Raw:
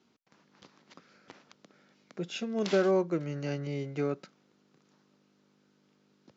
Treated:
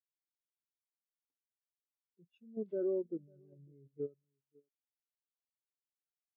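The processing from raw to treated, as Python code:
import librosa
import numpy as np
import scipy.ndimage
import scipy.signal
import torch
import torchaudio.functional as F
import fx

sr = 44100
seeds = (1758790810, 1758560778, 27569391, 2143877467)

y = fx.wiener(x, sr, points=9)
y = y + 10.0 ** (-11.0 / 20.0) * np.pad(y, (int(547 * sr / 1000.0), 0))[:len(y)]
y = fx.level_steps(y, sr, step_db=10)
y = fx.spectral_expand(y, sr, expansion=2.5)
y = y * 10.0 ** (-5.5 / 20.0)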